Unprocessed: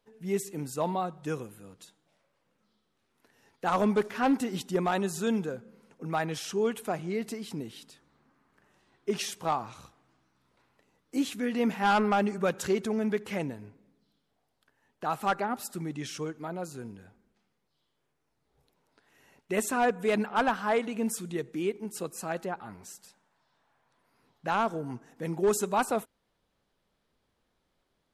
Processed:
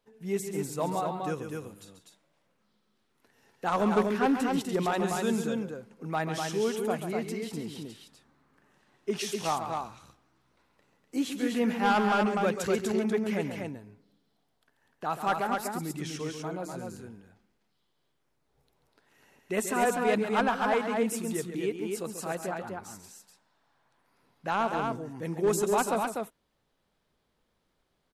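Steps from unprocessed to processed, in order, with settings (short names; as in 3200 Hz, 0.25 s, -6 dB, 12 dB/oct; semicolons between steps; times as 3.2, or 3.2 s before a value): loudspeakers at several distances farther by 47 m -9 dB, 85 m -4 dB; gain -1 dB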